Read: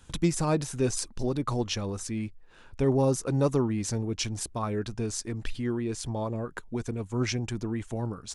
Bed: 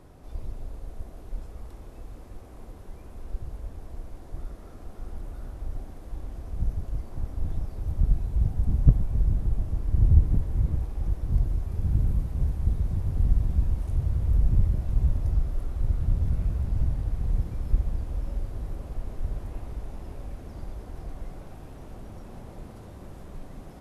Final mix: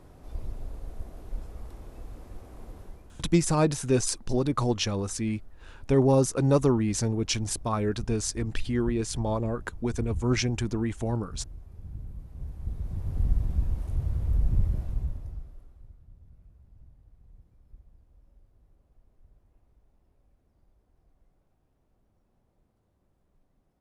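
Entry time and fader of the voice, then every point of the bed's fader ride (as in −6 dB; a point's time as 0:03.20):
3.10 s, +3.0 dB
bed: 0:02.82 −0.5 dB
0:03.37 −16 dB
0:12.14 −16 dB
0:13.18 −3 dB
0:14.80 −3 dB
0:16.04 −28.5 dB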